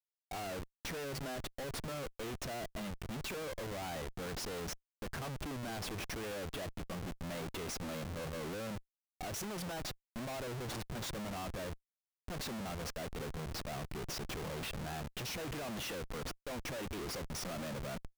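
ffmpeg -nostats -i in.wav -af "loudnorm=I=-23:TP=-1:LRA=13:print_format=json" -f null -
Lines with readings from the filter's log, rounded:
"input_i" : "-41.7",
"input_tp" : "-32.6",
"input_lra" : "1.2",
"input_thresh" : "-51.7",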